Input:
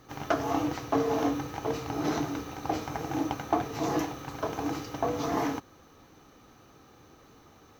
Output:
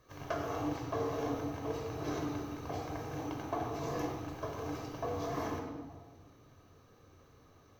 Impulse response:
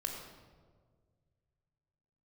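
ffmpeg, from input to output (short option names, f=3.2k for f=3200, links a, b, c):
-filter_complex "[0:a]equalizer=f=88:t=o:w=0.29:g=9[a];[1:a]atrim=start_sample=2205[b];[a][b]afir=irnorm=-1:irlink=0,volume=-8.5dB"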